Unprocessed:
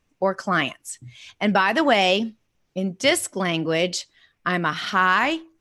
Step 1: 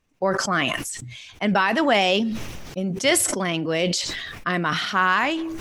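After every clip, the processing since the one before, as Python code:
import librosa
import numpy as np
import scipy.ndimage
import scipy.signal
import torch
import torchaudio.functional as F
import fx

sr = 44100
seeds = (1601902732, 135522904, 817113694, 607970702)

y = fx.sustainer(x, sr, db_per_s=33.0)
y = y * librosa.db_to_amplitude(-1.5)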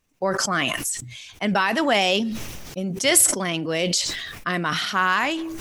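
y = fx.high_shelf(x, sr, hz=5800.0, db=10.0)
y = y * librosa.db_to_amplitude(-1.5)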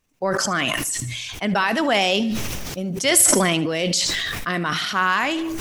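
y = fx.echo_feedback(x, sr, ms=75, feedback_pct=44, wet_db=-18.0)
y = fx.sustainer(y, sr, db_per_s=20.0)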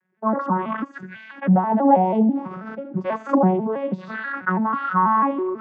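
y = fx.vocoder_arp(x, sr, chord='minor triad', root=54, every_ms=163)
y = fx.dynamic_eq(y, sr, hz=730.0, q=1.8, threshold_db=-38.0, ratio=4.0, max_db=-6)
y = fx.envelope_lowpass(y, sr, base_hz=800.0, top_hz=1700.0, q=7.5, full_db=-17.5, direction='down')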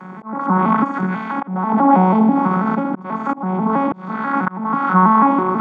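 y = fx.bin_compress(x, sr, power=0.4)
y = y + 0.42 * np.pad(y, (int(0.9 * sr / 1000.0), 0))[:len(y)]
y = fx.auto_swell(y, sr, attack_ms=430.0)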